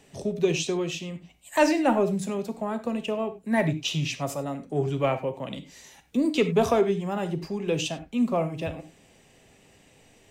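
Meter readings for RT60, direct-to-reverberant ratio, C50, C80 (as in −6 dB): non-exponential decay, 8.5 dB, 12.5 dB, 16.5 dB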